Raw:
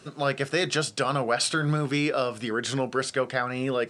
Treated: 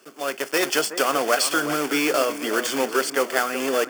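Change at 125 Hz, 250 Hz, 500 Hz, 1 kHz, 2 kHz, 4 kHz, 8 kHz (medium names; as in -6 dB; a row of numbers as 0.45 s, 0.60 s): -15.5 dB, +2.0 dB, +4.0 dB, +4.5 dB, +5.0 dB, +4.0 dB, +7.0 dB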